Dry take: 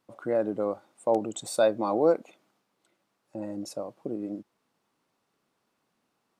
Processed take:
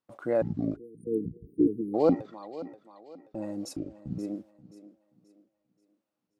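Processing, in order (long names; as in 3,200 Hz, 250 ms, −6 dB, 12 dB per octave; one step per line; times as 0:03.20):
pitch shifter gated in a rhythm −11 semitones, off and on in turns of 418 ms
noise gate −50 dBFS, range −14 dB
feedback echo with a high-pass in the loop 530 ms, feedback 37%, high-pass 180 Hz, level −15.5 dB
time-frequency box erased 0:00.76–0:01.94, 480–8,700 Hz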